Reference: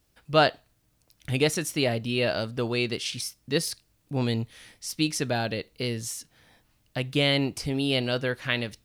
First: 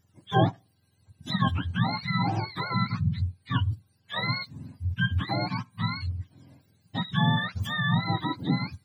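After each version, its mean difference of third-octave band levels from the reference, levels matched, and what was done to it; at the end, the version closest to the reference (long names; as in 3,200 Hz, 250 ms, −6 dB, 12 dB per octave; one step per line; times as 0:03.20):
14.5 dB: frequency axis turned over on the octave scale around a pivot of 700 Hz
in parallel at 0 dB: downward compressor, threshold −33 dBFS, peak gain reduction 17.5 dB
on the sum: level −3.5 dB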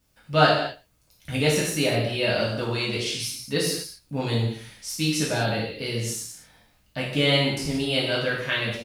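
6.5 dB: single-tap delay 114 ms −23.5 dB
reverb whose tail is shaped and stops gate 280 ms falling, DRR −6 dB
level −3.5 dB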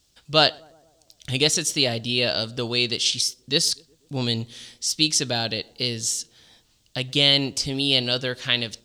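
4.0 dB: flat-topped bell 5,000 Hz +11.5 dB
on a send: tape delay 121 ms, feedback 67%, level −24 dB, low-pass 1,100 Hz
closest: third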